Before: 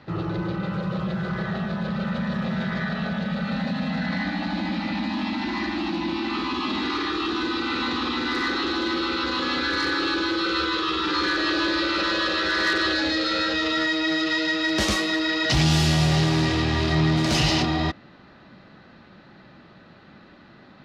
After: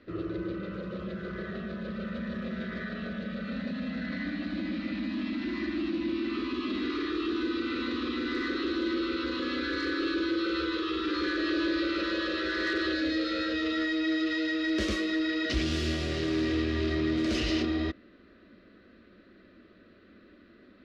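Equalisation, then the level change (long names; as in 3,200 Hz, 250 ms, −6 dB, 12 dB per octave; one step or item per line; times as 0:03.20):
low-pass filter 1,600 Hz 6 dB per octave
phaser with its sweep stopped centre 350 Hz, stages 4
−2.0 dB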